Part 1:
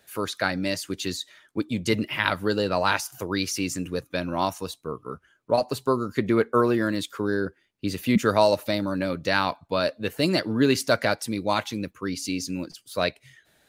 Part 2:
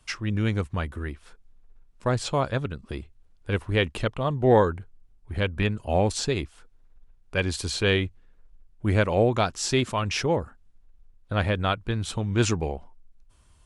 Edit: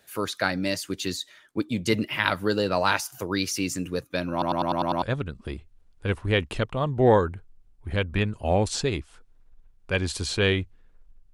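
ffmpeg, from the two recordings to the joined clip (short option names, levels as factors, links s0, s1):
-filter_complex "[0:a]apad=whole_dur=11.33,atrim=end=11.33,asplit=7[s0][s1][s2][s3][s4][s5][s6];[s0]atrim=end=4.422[s7];[s1]atrim=start=4.318:end=4.422[s8];[s2]atrim=start=4.318:end=4.422[s9];[s3]atrim=start=4.318:end=4.422[s10];[s4]atrim=start=4.318:end=4.422[s11];[s5]atrim=start=4.318:end=4.422[s12];[s6]atrim=start=4.318:end=4.422[s13];[1:a]atrim=start=2.458:end=8.77[s14];[s7][s8]acrossfade=d=0.004:c1=hsin:c2=hsin[s15];[s15][s9]acrossfade=d=0.004:c1=hsin:c2=hsin[s16];[s16][s10]acrossfade=d=0.004:c1=hsin:c2=hsin[s17];[s17][s11]acrossfade=d=0.004:c1=hsin:c2=hsin[s18];[s18][s12]acrossfade=d=0.004:c1=hsin:c2=hsin[s19];[s19][s13]acrossfade=d=0.004:c1=hsin:c2=hsin[s20];[s20][s14]acrossfade=d=0.004:c1=hsin:c2=hsin"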